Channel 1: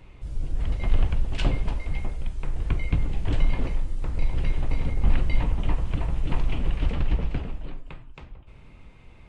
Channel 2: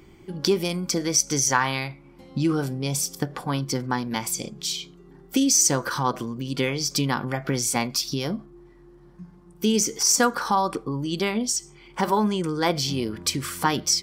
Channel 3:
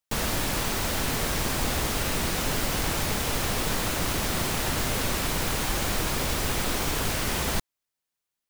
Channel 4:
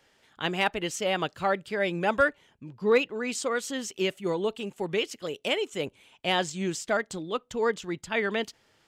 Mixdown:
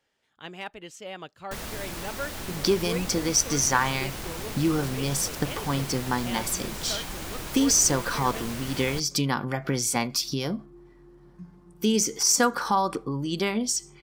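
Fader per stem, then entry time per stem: off, -1.5 dB, -9.0 dB, -11.5 dB; off, 2.20 s, 1.40 s, 0.00 s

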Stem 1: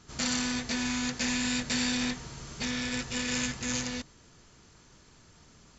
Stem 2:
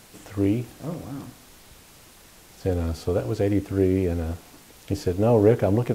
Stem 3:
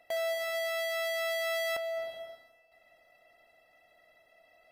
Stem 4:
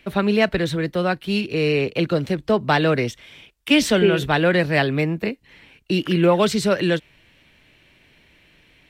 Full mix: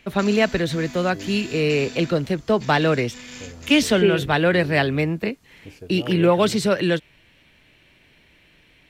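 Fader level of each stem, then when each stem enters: -8.5, -15.5, -17.5, -0.5 dB; 0.00, 0.75, 0.10, 0.00 s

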